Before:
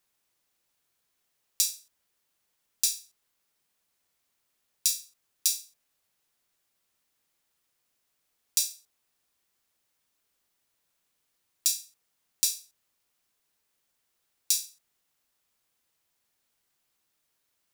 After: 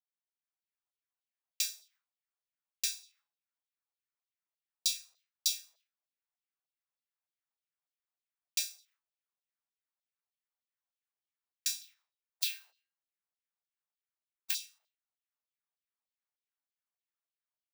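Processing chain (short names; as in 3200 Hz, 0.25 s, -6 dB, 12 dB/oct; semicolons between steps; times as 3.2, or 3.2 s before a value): 11.81–14.54 spectral limiter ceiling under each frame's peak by 26 dB; gate with hold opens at -59 dBFS; bell 11000 Hz -12 dB 2.4 oct; AGC gain up to 7.5 dB; flange 0.12 Hz, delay 8.5 ms, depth 4.3 ms, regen +85%; LFO high-pass saw down 3.3 Hz 580–4300 Hz; gain -1.5 dB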